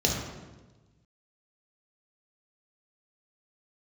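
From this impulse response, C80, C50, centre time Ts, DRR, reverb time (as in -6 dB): 5.0 dB, 2.5 dB, 55 ms, -1.5 dB, 1.2 s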